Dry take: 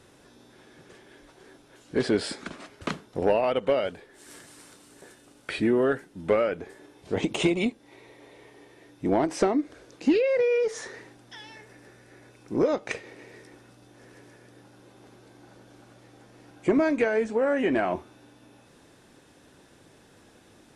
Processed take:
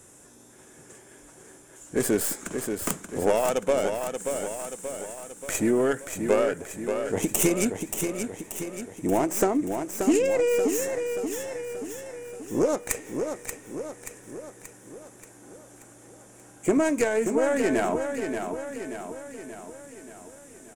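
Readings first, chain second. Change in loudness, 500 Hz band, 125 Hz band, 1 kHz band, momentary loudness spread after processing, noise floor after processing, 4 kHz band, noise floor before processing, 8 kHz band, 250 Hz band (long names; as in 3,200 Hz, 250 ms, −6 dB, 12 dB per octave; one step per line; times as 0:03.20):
−0.5 dB, +1.0 dB, +1.0 dB, +1.5 dB, 18 LU, −52 dBFS, −2.0 dB, −57 dBFS, +14.5 dB, +1.0 dB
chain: stylus tracing distortion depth 0.19 ms
high shelf with overshoot 5,700 Hz +10 dB, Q 3
repeating echo 581 ms, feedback 55%, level −6.5 dB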